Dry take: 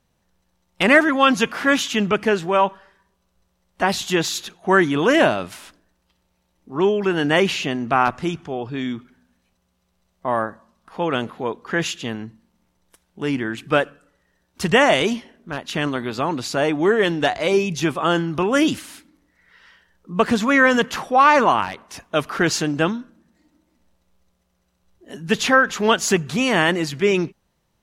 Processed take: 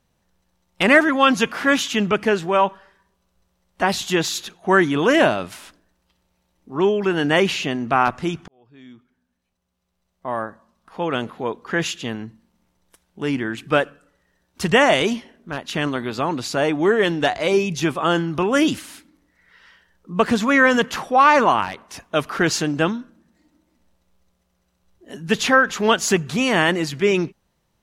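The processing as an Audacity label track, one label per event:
8.480000	11.500000	fade in

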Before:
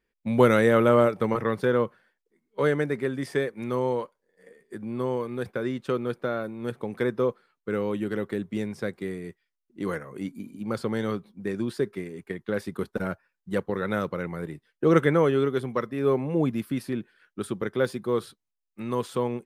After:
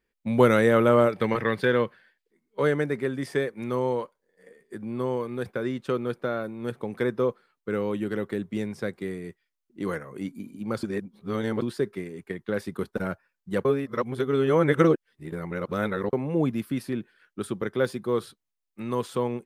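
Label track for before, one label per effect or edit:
1.120000	2.320000	gain on a spectral selection 1,500–5,100 Hz +7 dB
10.830000	11.620000	reverse
13.650000	16.130000	reverse

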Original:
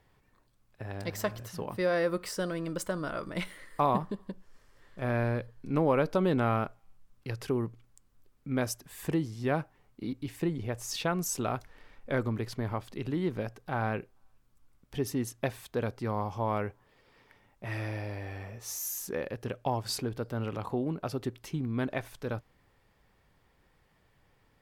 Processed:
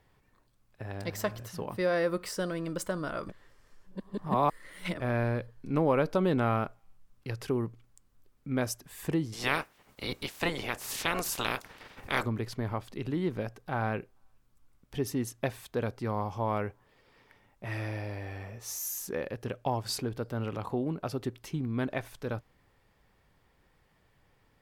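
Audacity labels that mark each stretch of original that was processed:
3.290000	5.000000	reverse
9.320000	12.240000	ceiling on every frequency bin ceiling under each frame's peak by 27 dB

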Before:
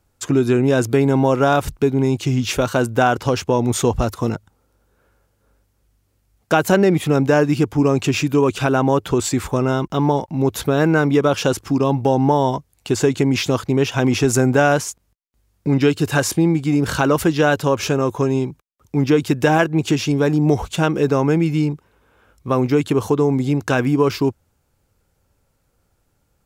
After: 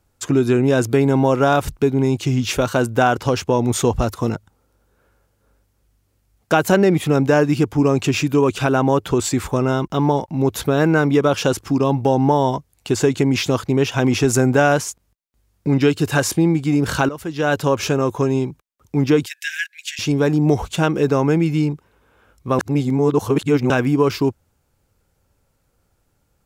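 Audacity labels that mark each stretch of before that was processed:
17.090000	17.560000	fade in quadratic, from −15 dB
19.260000	19.990000	Butterworth high-pass 1,600 Hz 96 dB per octave
22.590000	23.700000	reverse

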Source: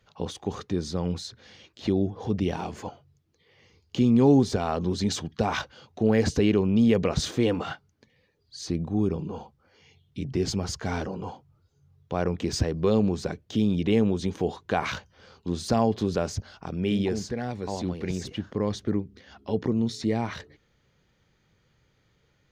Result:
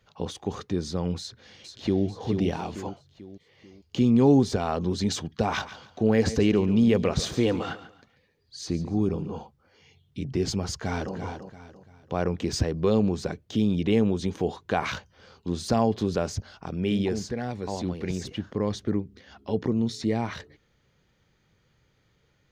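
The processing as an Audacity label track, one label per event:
1.200000	2.050000	delay throw 440 ms, feedback 45%, level −6.5 dB
5.430000	9.400000	repeating echo 141 ms, feedback 29%, level −14 dB
10.740000	11.150000	delay throw 340 ms, feedback 35%, level −8.5 dB

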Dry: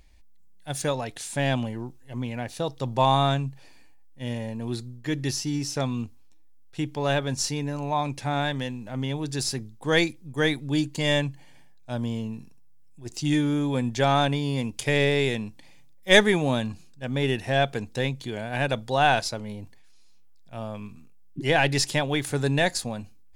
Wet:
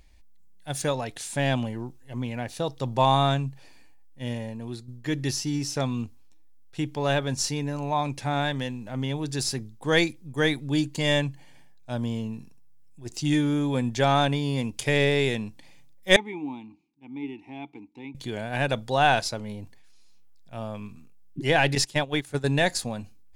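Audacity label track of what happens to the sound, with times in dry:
4.270000	4.880000	fade out, to −8.5 dB
16.160000	18.150000	formant filter u
21.750000	22.540000	noise gate −26 dBFS, range −13 dB

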